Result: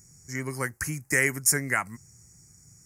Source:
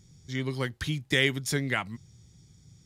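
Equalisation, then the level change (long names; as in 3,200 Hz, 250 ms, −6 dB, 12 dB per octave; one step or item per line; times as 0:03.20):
Butterworth band-reject 3,500 Hz, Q 0.66
tilt shelving filter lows −9.5 dB, about 1,400 Hz
+6.5 dB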